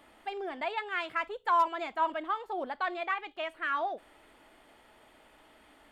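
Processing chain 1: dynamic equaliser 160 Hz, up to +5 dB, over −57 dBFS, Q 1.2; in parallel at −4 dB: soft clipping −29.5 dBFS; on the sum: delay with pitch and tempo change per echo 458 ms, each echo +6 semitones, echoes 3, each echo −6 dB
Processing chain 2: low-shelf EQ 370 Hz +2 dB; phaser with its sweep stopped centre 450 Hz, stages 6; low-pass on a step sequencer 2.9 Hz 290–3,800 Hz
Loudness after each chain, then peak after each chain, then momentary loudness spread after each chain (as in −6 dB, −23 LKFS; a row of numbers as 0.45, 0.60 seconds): −28.5, −30.5 LKFS; −13.0, −11.5 dBFS; 10, 18 LU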